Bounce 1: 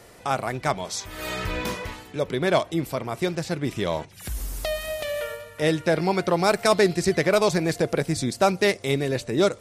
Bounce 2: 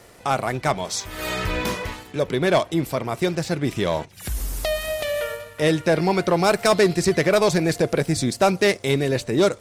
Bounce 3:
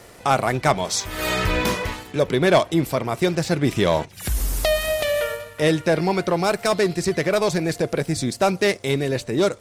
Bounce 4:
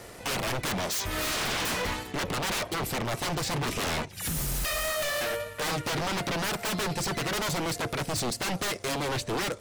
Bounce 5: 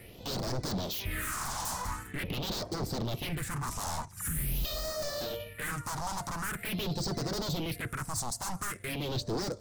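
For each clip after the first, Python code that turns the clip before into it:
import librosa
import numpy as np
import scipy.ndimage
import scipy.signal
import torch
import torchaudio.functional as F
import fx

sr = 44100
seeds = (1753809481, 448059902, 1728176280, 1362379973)

y1 = fx.leveller(x, sr, passes=1)
y2 = fx.rider(y1, sr, range_db=10, speed_s=2.0)
y3 = 10.0 ** (-24.5 / 20.0) * (np.abs((y2 / 10.0 ** (-24.5 / 20.0) + 3.0) % 4.0 - 2.0) - 1.0)
y4 = fx.phaser_stages(y3, sr, stages=4, low_hz=380.0, high_hz=2500.0, hz=0.45, feedback_pct=50)
y4 = y4 * librosa.db_to_amplitude(-3.0)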